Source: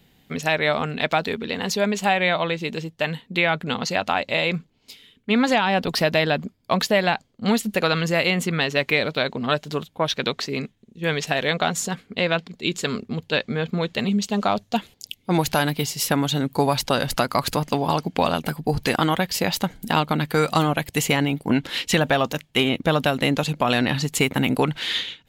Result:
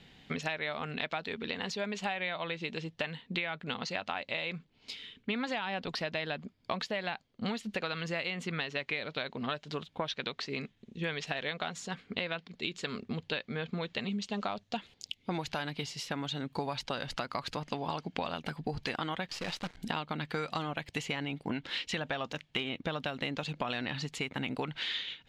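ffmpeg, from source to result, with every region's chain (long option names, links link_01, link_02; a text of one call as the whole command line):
ffmpeg -i in.wav -filter_complex "[0:a]asettb=1/sr,asplit=3[link_01][link_02][link_03];[link_01]atrim=end=19.284[link_04];[link_02]atrim=start=19.28:end=19.77,asetpts=PTS-STARTPTS,afade=type=in:duration=0.004:curve=qsin,afade=type=out:start_time=0.486:duration=0.004:curve=qsin,acrusher=bits=5:dc=4:mix=0:aa=0.000001,volume=19.5dB,asoftclip=hard,volume=-19.5dB[link_05];[link_03]atrim=start=19.766[link_06];[link_04][link_05]acrossfade=duration=0.004:curve1=hsin:curve2=qsin[link_07];[link_07][link_06]acrossfade=duration=0.004:curve1=qsin:curve2=hsin,tiltshelf=frequency=1200:gain=-3.5,acompressor=threshold=-36dB:ratio=5,lowpass=4200,volume=2.5dB" out.wav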